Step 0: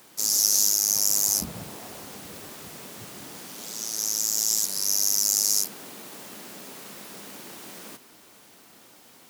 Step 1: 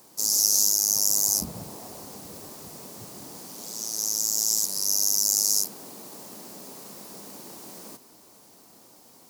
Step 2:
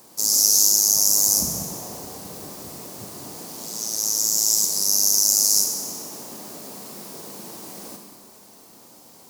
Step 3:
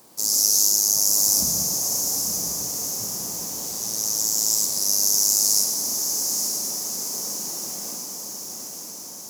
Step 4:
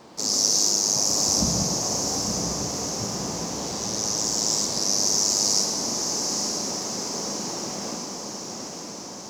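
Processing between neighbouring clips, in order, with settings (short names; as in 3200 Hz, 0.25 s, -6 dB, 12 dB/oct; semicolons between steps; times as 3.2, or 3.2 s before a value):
band shelf 2200 Hz -8.5 dB
Schroeder reverb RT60 1.6 s, combs from 31 ms, DRR 4.5 dB; gain +3.5 dB
diffused feedback echo 0.924 s, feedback 61%, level -5 dB; gain -2 dB
air absorption 160 m; gain +9 dB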